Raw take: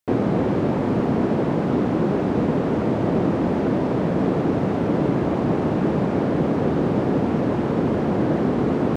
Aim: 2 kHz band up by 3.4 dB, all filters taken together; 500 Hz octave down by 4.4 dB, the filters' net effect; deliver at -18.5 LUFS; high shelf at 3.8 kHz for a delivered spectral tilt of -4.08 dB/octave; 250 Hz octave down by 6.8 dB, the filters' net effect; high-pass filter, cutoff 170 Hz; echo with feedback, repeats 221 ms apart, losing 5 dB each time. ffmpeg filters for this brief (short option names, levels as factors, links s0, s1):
-af "highpass=170,equalizer=f=250:t=o:g=-6.5,equalizer=f=500:t=o:g=-3.5,equalizer=f=2000:t=o:g=5.5,highshelf=f=3800:g=-3.5,aecho=1:1:221|442|663|884|1105|1326|1547:0.562|0.315|0.176|0.0988|0.0553|0.031|0.0173,volume=2.11"